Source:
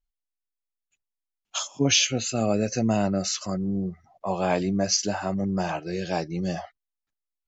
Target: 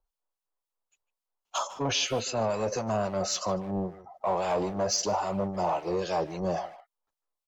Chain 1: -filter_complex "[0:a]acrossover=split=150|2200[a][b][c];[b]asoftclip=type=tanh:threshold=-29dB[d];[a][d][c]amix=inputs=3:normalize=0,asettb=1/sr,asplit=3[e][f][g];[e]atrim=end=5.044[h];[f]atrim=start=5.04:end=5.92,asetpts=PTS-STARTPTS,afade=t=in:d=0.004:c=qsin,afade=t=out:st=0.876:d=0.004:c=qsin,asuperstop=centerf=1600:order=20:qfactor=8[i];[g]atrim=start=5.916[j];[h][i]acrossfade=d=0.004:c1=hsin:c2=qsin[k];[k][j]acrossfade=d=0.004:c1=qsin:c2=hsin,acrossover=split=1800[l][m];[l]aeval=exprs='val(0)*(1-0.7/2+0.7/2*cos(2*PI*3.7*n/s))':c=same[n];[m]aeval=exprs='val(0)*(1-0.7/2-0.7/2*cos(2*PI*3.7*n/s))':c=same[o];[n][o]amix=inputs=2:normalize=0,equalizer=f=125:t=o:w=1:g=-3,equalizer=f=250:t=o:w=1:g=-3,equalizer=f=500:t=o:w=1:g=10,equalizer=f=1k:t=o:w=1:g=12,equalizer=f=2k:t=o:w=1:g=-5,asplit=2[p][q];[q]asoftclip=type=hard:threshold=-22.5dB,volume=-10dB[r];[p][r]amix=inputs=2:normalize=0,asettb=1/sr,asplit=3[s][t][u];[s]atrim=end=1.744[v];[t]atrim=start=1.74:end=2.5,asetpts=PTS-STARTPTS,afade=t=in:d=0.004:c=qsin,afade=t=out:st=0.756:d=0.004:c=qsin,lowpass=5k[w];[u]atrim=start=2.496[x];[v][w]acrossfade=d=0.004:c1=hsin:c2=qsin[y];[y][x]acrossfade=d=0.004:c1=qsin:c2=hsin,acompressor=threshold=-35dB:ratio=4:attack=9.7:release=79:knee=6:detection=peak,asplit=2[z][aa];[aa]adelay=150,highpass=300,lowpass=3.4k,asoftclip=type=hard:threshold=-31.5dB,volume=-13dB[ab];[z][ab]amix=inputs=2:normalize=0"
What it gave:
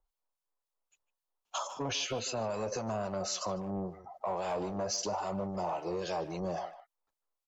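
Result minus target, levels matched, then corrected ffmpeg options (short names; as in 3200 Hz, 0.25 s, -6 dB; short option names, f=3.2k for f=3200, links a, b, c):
compressor: peak gain reduction +8 dB; hard clip: distortion -7 dB
-filter_complex "[0:a]acrossover=split=150|2200[a][b][c];[b]asoftclip=type=tanh:threshold=-29dB[d];[a][d][c]amix=inputs=3:normalize=0,asettb=1/sr,asplit=3[e][f][g];[e]atrim=end=5.044[h];[f]atrim=start=5.04:end=5.92,asetpts=PTS-STARTPTS,afade=t=in:d=0.004:c=qsin,afade=t=out:st=0.876:d=0.004:c=qsin,asuperstop=centerf=1600:order=20:qfactor=8[i];[g]atrim=start=5.916[j];[h][i]acrossfade=d=0.004:c1=hsin:c2=qsin[k];[k][j]acrossfade=d=0.004:c1=qsin:c2=hsin,acrossover=split=1800[l][m];[l]aeval=exprs='val(0)*(1-0.7/2+0.7/2*cos(2*PI*3.7*n/s))':c=same[n];[m]aeval=exprs='val(0)*(1-0.7/2-0.7/2*cos(2*PI*3.7*n/s))':c=same[o];[n][o]amix=inputs=2:normalize=0,equalizer=f=125:t=o:w=1:g=-3,equalizer=f=250:t=o:w=1:g=-3,equalizer=f=500:t=o:w=1:g=10,equalizer=f=1k:t=o:w=1:g=12,equalizer=f=2k:t=o:w=1:g=-5,asplit=2[p][q];[q]asoftclip=type=hard:threshold=-29dB,volume=-10dB[r];[p][r]amix=inputs=2:normalize=0,asettb=1/sr,asplit=3[s][t][u];[s]atrim=end=1.744[v];[t]atrim=start=1.74:end=2.5,asetpts=PTS-STARTPTS,afade=t=in:d=0.004:c=qsin,afade=t=out:st=0.756:d=0.004:c=qsin,lowpass=5k[w];[u]atrim=start=2.496[x];[v][w]acrossfade=d=0.004:c1=hsin:c2=qsin[y];[y][x]acrossfade=d=0.004:c1=qsin:c2=hsin,acompressor=threshold=-25dB:ratio=4:attack=9.7:release=79:knee=6:detection=peak,asplit=2[z][aa];[aa]adelay=150,highpass=300,lowpass=3.4k,asoftclip=type=hard:threshold=-31.5dB,volume=-13dB[ab];[z][ab]amix=inputs=2:normalize=0"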